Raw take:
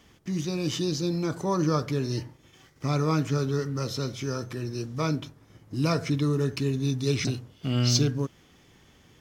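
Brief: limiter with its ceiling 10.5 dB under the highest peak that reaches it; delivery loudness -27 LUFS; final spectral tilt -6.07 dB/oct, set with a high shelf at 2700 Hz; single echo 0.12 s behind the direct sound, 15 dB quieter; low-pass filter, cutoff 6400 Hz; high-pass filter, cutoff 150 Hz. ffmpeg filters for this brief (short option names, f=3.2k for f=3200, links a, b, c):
-af "highpass=150,lowpass=6.4k,highshelf=f=2.7k:g=-4.5,alimiter=limit=-24dB:level=0:latency=1,aecho=1:1:120:0.178,volume=7dB"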